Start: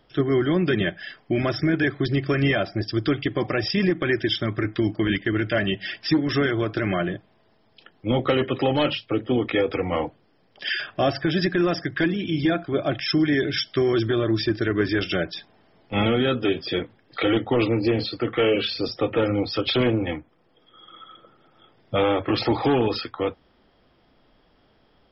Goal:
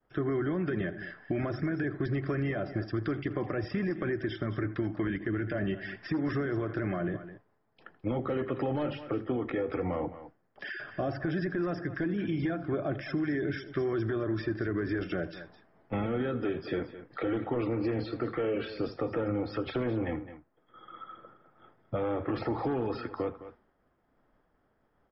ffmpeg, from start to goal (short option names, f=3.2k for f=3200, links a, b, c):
-filter_complex "[0:a]agate=range=-33dB:threshold=-52dB:ratio=3:detection=peak,highshelf=f=2.3k:t=q:w=1.5:g=-11.5,alimiter=limit=-17.5dB:level=0:latency=1,aecho=1:1:81|210:0.106|0.141,acrossover=split=620|3900[a][b][c];[a]acompressor=threshold=-27dB:ratio=4[d];[b]acompressor=threshold=-39dB:ratio=4[e];[c]acompressor=threshold=-54dB:ratio=4[f];[d][e][f]amix=inputs=3:normalize=0,volume=-1.5dB"